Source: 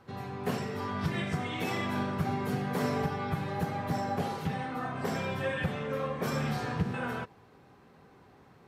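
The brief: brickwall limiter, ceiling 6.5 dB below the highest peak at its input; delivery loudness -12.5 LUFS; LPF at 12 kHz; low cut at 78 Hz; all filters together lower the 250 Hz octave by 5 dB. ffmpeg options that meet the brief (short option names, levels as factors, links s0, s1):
-af "highpass=78,lowpass=12000,equalizer=f=250:t=o:g=-7,volume=15,alimiter=limit=0.75:level=0:latency=1"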